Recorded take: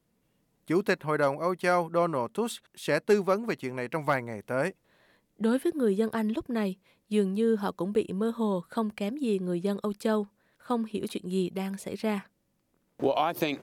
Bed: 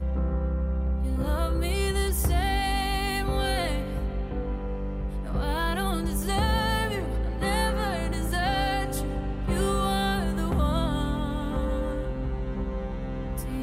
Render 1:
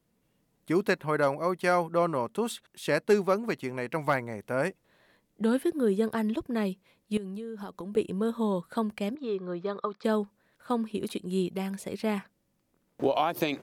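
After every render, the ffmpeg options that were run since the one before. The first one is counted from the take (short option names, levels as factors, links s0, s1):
-filter_complex "[0:a]asettb=1/sr,asplit=3[s0][s1][s2];[s0]atrim=end=7.174[s3];[s1]atrim=start=7.17:end=7.97,asetpts=PTS-STARTPTS,afade=t=in:d=0.004:c=qsin,afade=t=out:st=0.796:d=0.004:c=qsin,acompressor=threshold=0.02:ratio=16:attack=3.2:release=140:knee=1:detection=peak[s4];[s2]atrim=start=7.966[s5];[s3][s4]acrossfade=d=0.004:c1=hsin:c2=qsin[s6];[s6][s5]acrossfade=d=0.004:c1=qsin:c2=hsin,asettb=1/sr,asplit=3[s7][s8][s9];[s7]atrim=end=9.154[s10];[s8]atrim=start=9.15:end=10.04,asetpts=PTS-STARTPTS,afade=t=in:d=0.004:c=qsin,afade=t=out:st=0.886:d=0.004:c=qsin,highpass=190,equalizer=f=210:t=q:w=4:g=-8,equalizer=f=300:t=q:w=4:g=-9,equalizer=f=1200:t=q:w=4:g=10,equalizer=f=2800:t=q:w=4:g=-9,lowpass=f=4200:w=0.5412,lowpass=f=4200:w=1.3066[s11];[s9]atrim=start=10.036[s12];[s10][s11]acrossfade=d=0.004:c1=hsin:c2=qsin[s13];[s13][s12]acrossfade=d=0.004:c1=qsin:c2=hsin"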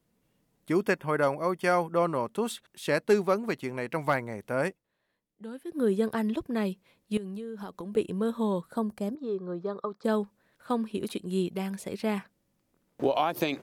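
-filter_complex "[0:a]asettb=1/sr,asplit=3[s0][s1][s2];[s0]atrim=end=0.754[s3];[s1]atrim=start=0.75:end=2.05,asetpts=PTS-STARTPTS,afade=t=in:d=0.004:c=qsin,afade=t=out:st=1.296:d=0.004:c=qsin,asuperstop=centerf=4000:order=12:qfactor=7.7[s4];[s2]atrim=start=2.046[s5];[s3][s4]acrossfade=d=0.004:c1=hsin:c2=qsin[s6];[s6][s5]acrossfade=d=0.004:c1=qsin:c2=hsin,asettb=1/sr,asplit=3[s7][s8][s9];[s7]atrim=end=8.714[s10];[s8]atrim=start=8.71:end=10.08,asetpts=PTS-STARTPTS,afade=t=in:d=0.004:c=qsin,afade=t=out:st=1.366:d=0.004:c=qsin,equalizer=f=2600:w=1:g=-13[s11];[s9]atrim=start=10.076[s12];[s10][s11]acrossfade=d=0.004:c1=hsin:c2=qsin[s13];[s13][s12]acrossfade=d=0.004:c1=qsin:c2=hsin,asplit=3[s14][s15][s16];[s14]atrim=end=4.85,asetpts=PTS-STARTPTS,afade=t=out:st=4.68:d=0.17:c=qua:silence=0.177828[s17];[s15]atrim=start=4.85:end=5.62,asetpts=PTS-STARTPTS,volume=0.178[s18];[s16]atrim=start=5.62,asetpts=PTS-STARTPTS,afade=t=in:d=0.17:c=qua:silence=0.177828[s19];[s17][s18][s19]concat=n=3:v=0:a=1"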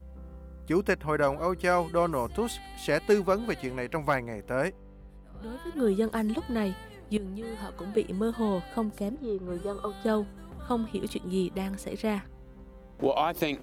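-filter_complex "[1:a]volume=0.119[s0];[0:a][s0]amix=inputs=2:normalize=0"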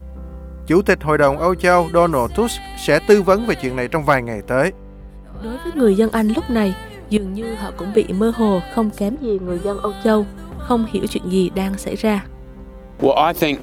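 -af "volume=3.98,alimiter=limit=0.794:level=0:latency=1"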